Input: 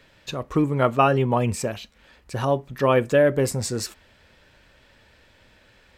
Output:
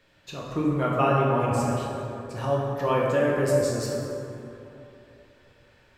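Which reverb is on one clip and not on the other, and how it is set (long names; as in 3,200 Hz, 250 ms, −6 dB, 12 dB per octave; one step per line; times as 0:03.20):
dense smooth reverb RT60 3.1 s, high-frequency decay 0.4×, DRR −4.5 dB
level −9 dB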